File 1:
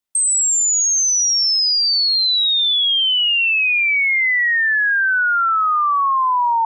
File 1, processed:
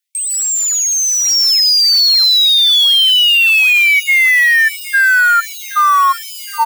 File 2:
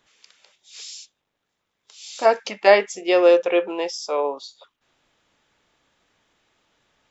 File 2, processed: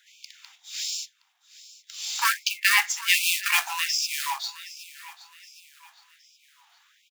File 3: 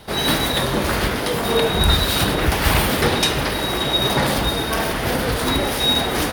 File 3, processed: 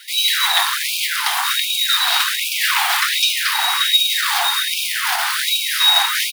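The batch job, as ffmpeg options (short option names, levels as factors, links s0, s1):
-filter_complex "[0:a]acrossover=split=5700[s0][s1];[s1]acompressor=threshold=0.0316:ratio=4:attack=1:release=60[s2];[s0][s2]amix=inputs=2:normalize=0,equalizer=f=180:w=2.7:g=12.5,asplit=2[s3][s4];[s4]asoftclip=type=tanh:threshold=0.376,volume=0.376[s5];[s3][s5]amix=inputs=2:normalize=0,acrusher=bits=3:mode=log:mix=0:aa=0.000001,asplit=2[s6][s7];[s7]aecho=0:1:768|1536|2304:0.126|0.0529|0.0222[s8];[s6][s8]amix=inputs=2:normalize=0,alimiter=level_in=1.58:limit=0.891:release=50:level=0:latency=1,afftfilt=real='re*gte(b*sr/1024,670*pow(2300/670,0.5+0.5*sin(2*PI*1.3*pts/sr)))':imag='im*gte(b*sr/1024,670*pow(2300/670,0.5+0.5*sin(2*PI*1.3*pts/sr)))':win_size=1024:overlap=0.75"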